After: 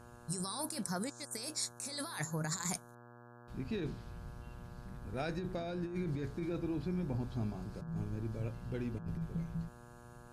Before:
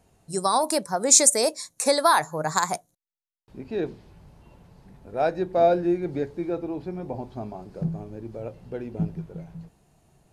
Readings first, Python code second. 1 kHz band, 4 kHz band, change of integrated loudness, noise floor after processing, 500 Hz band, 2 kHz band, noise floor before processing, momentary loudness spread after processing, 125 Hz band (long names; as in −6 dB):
−21.0 dB, −14.0 dB, −16.0 dB, −56 dBFS, −18.5 dB, −14.0 dB, −78 dBFS, 13 LU, −3.5 dB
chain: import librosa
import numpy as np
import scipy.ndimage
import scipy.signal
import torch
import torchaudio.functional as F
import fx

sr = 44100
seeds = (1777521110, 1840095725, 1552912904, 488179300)

y = fx.tone_stack(x, sr, knobs='6-0-2')
y = fx.over_compress(y, sr, threshold_db=-51.0, ratio=-1.0)
y = fx.dmg_buzz(y, sr, base_hz=120.0, harmonics=14, level_db=-67.0, tilt_db=-3, odd_only=False)
y = F.gain(torch.from_numpy(y), 11.0).numpy()